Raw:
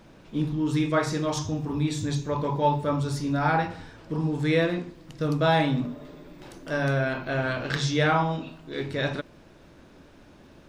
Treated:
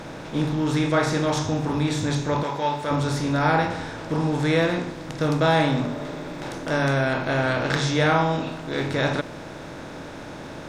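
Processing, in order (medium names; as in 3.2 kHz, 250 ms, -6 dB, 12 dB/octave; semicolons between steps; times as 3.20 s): spectral levelling over time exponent 0.6; 2.43–2.91 s: bass shelf 450 Hz -11 dB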